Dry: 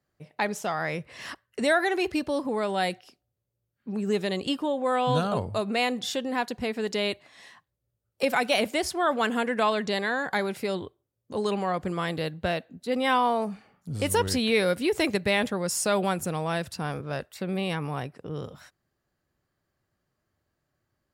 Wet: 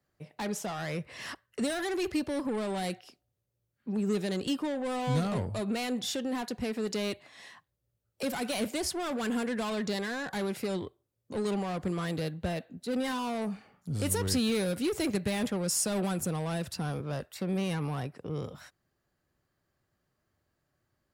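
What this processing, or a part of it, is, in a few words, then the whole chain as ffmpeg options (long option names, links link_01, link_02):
one-band saturation: -filter_complex "[0:a]acrossover=split=320|4900[link_01][link_02][link_03];[link_02]asoftclip=type=tanh:threshold=-34.5dB[link_04];[link_01][link_04][link_03]amix=inputs=3:normalize=0"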